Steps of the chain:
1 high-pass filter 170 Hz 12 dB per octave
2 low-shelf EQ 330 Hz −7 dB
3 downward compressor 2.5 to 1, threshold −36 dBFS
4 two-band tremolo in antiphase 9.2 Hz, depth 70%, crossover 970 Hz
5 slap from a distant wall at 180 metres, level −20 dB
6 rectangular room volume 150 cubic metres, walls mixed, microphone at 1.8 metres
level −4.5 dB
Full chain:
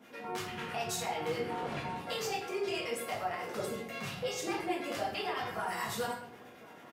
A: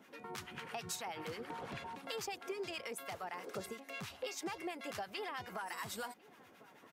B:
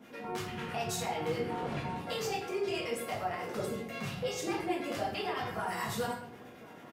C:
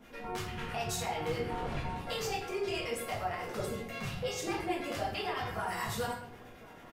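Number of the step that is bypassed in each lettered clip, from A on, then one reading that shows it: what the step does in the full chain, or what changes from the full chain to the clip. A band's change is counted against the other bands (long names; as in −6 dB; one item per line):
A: 6, echo-to-direct ratio 6.0 dB to −23.0 dB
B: 2, 125 Hz band +5.0 dB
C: 1, 125 Hz band +6.0 dB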